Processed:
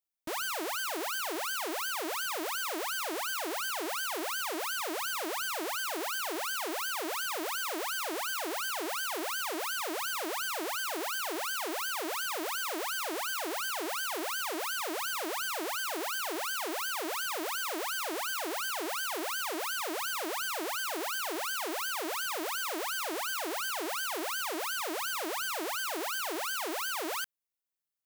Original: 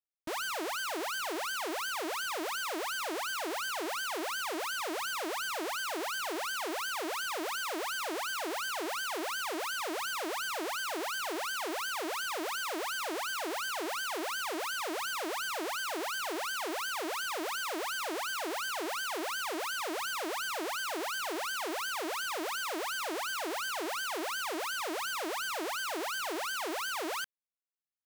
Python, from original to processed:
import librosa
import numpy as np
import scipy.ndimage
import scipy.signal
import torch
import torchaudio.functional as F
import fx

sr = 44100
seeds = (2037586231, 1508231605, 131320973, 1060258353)

y = fx.high_shelf(x, sr, hz=10000.0, db=8.0)